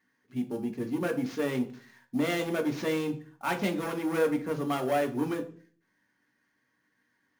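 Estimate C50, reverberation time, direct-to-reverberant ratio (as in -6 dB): 14.0 dB, 0.45 s, 4.5 dB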